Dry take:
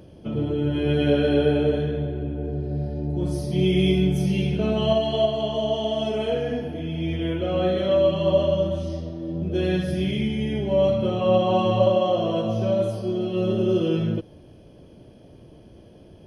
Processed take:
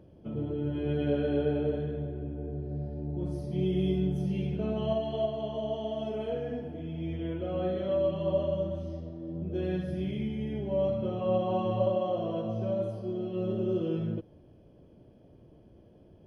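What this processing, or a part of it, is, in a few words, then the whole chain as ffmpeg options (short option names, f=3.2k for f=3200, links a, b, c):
through cloth: -filter_complex "[0:a]highshelf=f=2.3k:g=-12,asettb=1/sr,asplit=3[a][b][c];[a]atrim=end=3.644[d];[b]atrim=start=3.64:end=4.31,asetpts=PTS-STARTPTS,afade=t=in:d=0.004:c=qsin,afade=t=out:st=0.666:d=0.004:c=qsin,bandreject=f=2.3k:w=5.1[e];[c]atrim=start=4.306[f];[d][e]acrossfade=d=0.004:c1=hsin:c2=qsin[g];[g][f]acrossfade=d=0.004:c1=qsin:c2=hsin,volume=-8dB"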